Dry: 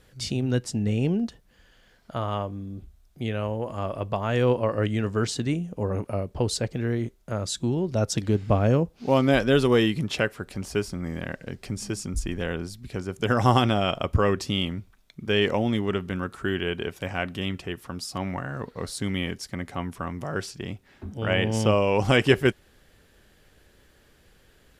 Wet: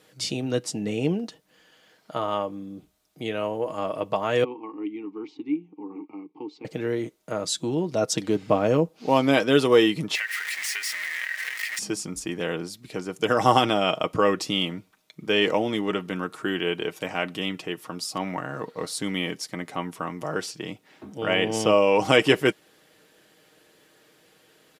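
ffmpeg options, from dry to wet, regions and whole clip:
-filter_complex "[0:a]asettb=1/sr,asplit=3[a][b][c];[a]atrim=end=4.444[d];[b]atrim=start=4.44:end=6.65,asetpts=PTS-STARTPTS,afade=t=in:d=0.004:c=qsin,afade=t=out:st=2.206:d=0.004:c=qsin,asplit=3[e][f][g];[e]bandpass=f=300:t=q:w=8,volume=0dB[h];[f]bandpass=f=870:t=q:w=8,volume=-6dB[i];[g]bandpass=f=2.24k:t=q:w=8,volume=-9dB[j];[h][i][j]amix=inputs=3:normalize=0,highpass=120,equalizer=f=400:t=q:w=4:g=6,equalizer=f=610:t=q:w=4:g=-7,equalizer=f=1.1k:t=q:w=4:g=6,lowpass=f=5.9k:w=0.5412,lowpass=f=5.9k:w=1.3066,bandreject=f=970:w=12[k];[c]atrim=start=6.646[l];[d][k]acrossfade=d=0.004:c1=hsin:c2=qsin[m];[m][l]acrossfade=d=0.004:c1=qsin:c2=hsin,asettb=1/sr,asplit=3[n][o][p];[n]atrim=end=10.154[q];[o]atrim=start=10.15:end=11.79,asetpts=PTS-STARTPTS,afade=t=in:d=0.004:c=qsin,afade=t=out:st=1.636:d=0.004:c=qsin,aeval=exprs='val(0)+0.5*0.0422*sgn(val(0))':c=same,highpass=f=1.9k:t=q:w=9.7,acompressor=threshold=-28dB:ratio=5:attack=3.2:release=140:knee=1:detection=peak[r];[p]atrim=start=11.786[s];[q][r]acrossfade=d=0.004:c1=hsin:c2=qsin[t];[t][s]acrossfade=d=0.004:c1=qsin:c2=hsin,highpass=240,equalizer=f=1.6k:w=3.8:g=-3.5,aecho=1:1:6.4:0.46,volume=2.5dB"

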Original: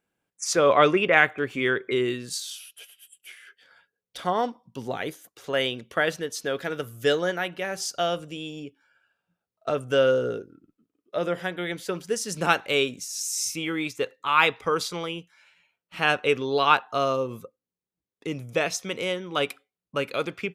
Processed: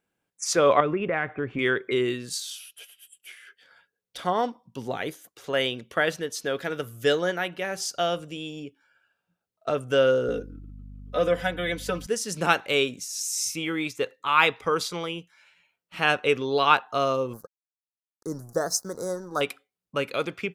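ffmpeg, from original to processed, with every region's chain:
-filter_complex "[0:a]asettb=1/sr,asplit=3[a][b][c];[a]atrim=end=0.804[d];[b]atrim=start=0.8:end=1.59,asetpts=PTS-STARTPTS,afade=t=in:d=0.004:c=qsin,afade=t=out:st=0.786:d=0.004:c=qsin,lowpass=1.9k,lowshelf=f=200:g=9,acompressor=threshold=-25dB:ratio=2.5:attack=3.2:release=140:knee=1:detection=peak[e];[c]atrim=start=1.586[f];[d][e]acrossfade=d=0.004:c1=hsin:c2=qsin[g];[g][f]acrossfade=d=0.004:c1=qsin:c2=hsin,asettb=1/sr,asplit=3[h][i][j];[h]atrim=end=10.284[k];[i]atrim=start=10.28:end=12.07,asetpts=PTS-STARTPTS,afade=t=in:d=0.004:c=qsin,afade=t=out:st=1.786:d=0.004:c=qsin,aecho=1:1:4:0.99,atrim=end_sample=78939,aeval=exprs='val(0)+0.00891*(sin(2*PI*50*n/s)+sin(2*PI*2*50*n/s)/2+sin(2*PI*3*50*n/s)/3+sin(2*PI*4*50*n/s)/4+sin(2*PI*5*50*n/s)/5)':c=same[l];[j]atrim=start=12.066[m];[k][l]acrossfade=d=0.004:c1=hsin:c2=qsin[n];[n][m]acrossfade=d=0.004:c1=qsin:c2=hsin,asettb=1/sr,asplit=3[o][p][q];[o]atrim=end=17.334[r];[p]atrim=start=17.33:end=19.41,asetpts=PTS-STARTPTS,afade=t=in:d=0.004:c=qsin,afade=t=out:st=2.076:d=0.004:c=qsin,aemphasis=mode=production:type=cd,aeval=exprs='sgn(val(0))*max(abs(val(0))-0.00501,0)':c=same,asuperstop=centerf=2700:order=8:qfactor=0.91[s];[q]atrim=start=19.406[t];[r][s]acrossfade=d=0.004:c1=hsin:c2=qsin[u];[u][t]acrossfade=d=0.004:c1=qsin:c2=hsin"

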